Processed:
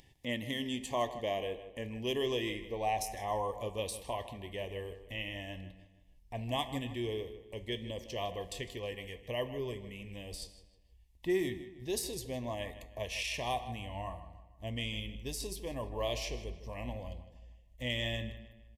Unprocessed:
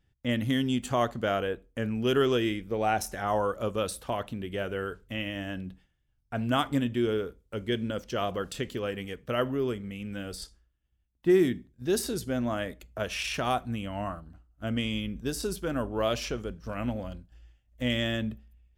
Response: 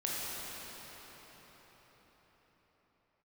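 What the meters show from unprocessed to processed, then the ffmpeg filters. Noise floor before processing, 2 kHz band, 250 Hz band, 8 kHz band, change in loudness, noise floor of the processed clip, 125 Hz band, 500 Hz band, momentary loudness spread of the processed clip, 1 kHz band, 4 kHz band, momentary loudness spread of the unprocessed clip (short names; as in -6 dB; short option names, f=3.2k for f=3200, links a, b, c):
-73 dBFS, -6.5 dB, -11.0 dB, -3.5 dB, -7.5 dB, -62 dBFS, -7.5 dB, -7.5 dB, 11 LU, -6.5 dB, -3.5 dB, 11 LU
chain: -filter_complex "[0:a]aresample=32000,aresample=44100,flanger=delay=7.1:depth=6.9:regen=-78:speed=0.33:shape=triangular,asuperstop=centerf=1400:order=8:qfactor=2.1,asubboost=boost=6:cutoff=87,acompressor=mode=upward:threshold=-40dB:ratio=2.5,lowshelf=f=290:g=-10,asplit=2[a][b];[b]adelay=156,lowpass=f=4k:p=1,volume=-13dB,asplit=2[c][d];[d]adelay=156,lowpass=f=4k:p=1,volume=0.43,asplit=2[e][f];[f]adelay=156,lowpass=f=4k:p=1,volume=0.43,asplit=2[g][h];[h]adelay=156,lowpass=f=4k:p=1,volume=0.43[i];[a][c][e][g][i]amix=inputs=5:normalize=0,asplit=2[j][k];[1:a]atrim=start_sample=2205,afade=t=out:st=0.24:d=0.01,atrim=end_sample=11025,asetrate=43218,aresample=44100[l];[k][l]afir=irnorm=-1:irlink=0,volume=-19.5dB[m];[j][m]amix=inputs=2:normalize=0"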